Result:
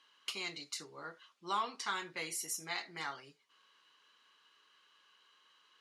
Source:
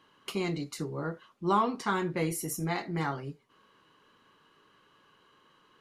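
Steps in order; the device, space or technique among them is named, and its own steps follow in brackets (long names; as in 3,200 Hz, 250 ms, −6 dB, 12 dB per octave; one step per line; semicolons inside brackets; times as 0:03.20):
piezo pickup straight into a mixer (low-pass filter 5,000 Hz 12 dB per octave; first difference)
level +8.5 dB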